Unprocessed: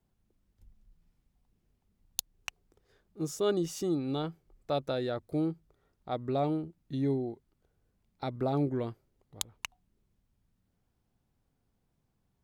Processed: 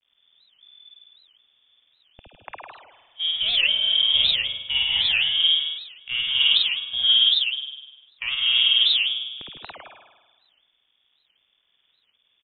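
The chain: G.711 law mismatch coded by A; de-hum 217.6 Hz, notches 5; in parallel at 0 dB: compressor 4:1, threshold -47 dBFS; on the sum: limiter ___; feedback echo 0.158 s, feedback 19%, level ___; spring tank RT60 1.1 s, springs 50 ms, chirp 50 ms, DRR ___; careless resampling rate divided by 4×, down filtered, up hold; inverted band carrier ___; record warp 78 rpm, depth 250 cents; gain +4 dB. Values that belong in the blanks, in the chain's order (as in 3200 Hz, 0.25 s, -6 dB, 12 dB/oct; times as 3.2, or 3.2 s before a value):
-21 dBFS, -6 dB, -5 dB, 3500 Hz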